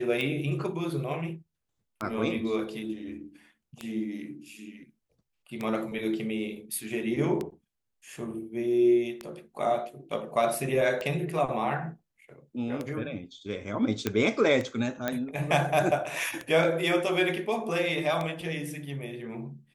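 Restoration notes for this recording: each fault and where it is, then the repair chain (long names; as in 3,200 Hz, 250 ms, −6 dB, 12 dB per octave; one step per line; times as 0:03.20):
scratch tick 33 1/3 rpm −19 dBFS
0:14.07: click −12 dBFS
0:15.08: click −14 dBFS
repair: click removal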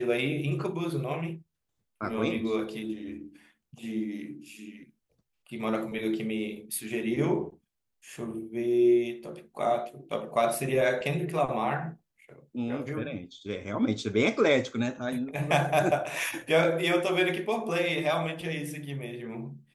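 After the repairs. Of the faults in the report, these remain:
none of them is left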